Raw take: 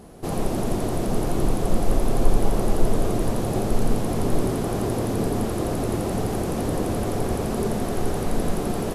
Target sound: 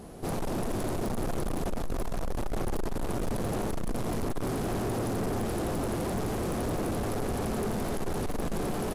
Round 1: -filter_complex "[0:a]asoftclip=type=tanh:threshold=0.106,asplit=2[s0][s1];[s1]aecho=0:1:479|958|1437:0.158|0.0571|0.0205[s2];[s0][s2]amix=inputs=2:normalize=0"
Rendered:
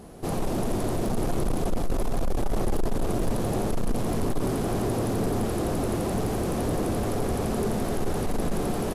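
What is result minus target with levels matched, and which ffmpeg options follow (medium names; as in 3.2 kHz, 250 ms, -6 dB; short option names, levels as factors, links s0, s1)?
saturation: distortion -4 dB
-filter_complex "[0:a]asoftclip=type=tanh:threshold=0.0422,asplit=2[s0][s1];[s1]aecho=0:1:479|958|1437:0.158|0.0571|0.0205[s2];[s0][s2]amix=inputs=2:normalize=0"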